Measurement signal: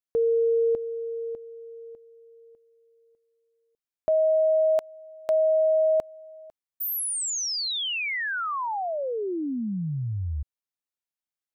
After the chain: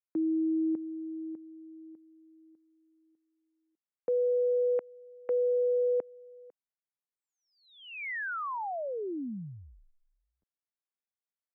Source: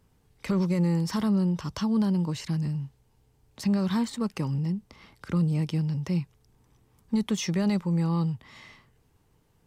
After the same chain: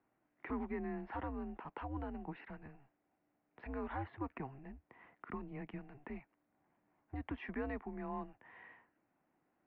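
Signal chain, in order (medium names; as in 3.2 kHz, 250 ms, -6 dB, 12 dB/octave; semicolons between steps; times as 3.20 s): mistuned SSB -140 Hz 340–2400 Hz; trim -6 dB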